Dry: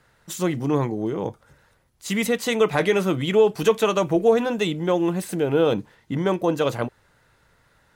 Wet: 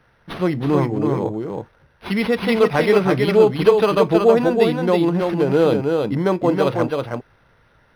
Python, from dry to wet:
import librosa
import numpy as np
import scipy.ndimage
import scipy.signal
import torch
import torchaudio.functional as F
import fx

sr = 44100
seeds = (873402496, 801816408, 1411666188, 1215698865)

y = x + 10.0 ** (-4.0 / 20.0) * np.pad(x, (int(322 * sr / 1000.0), 0))[:len(x)]
y = np.interp(np.arange(len(y)), np.arange(len(y))[::6], y[::6])
y = y * librosa.db_to_amplitude(3.5)